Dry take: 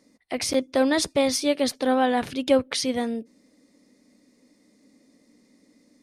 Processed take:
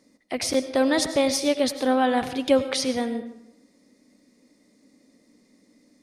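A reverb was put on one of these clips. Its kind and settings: algorithmic reverb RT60 0.81 s, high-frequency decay 0.65×, pre-delay 60 ms, DRR 10.5 dB

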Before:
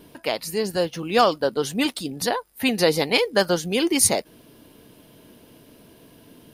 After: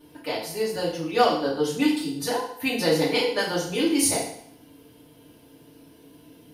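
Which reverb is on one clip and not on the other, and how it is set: FDN reverb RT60 0.65 s, low-frequency decay 1×, high-frequency decay 0.95×, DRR -7 dB; trim -11 dB

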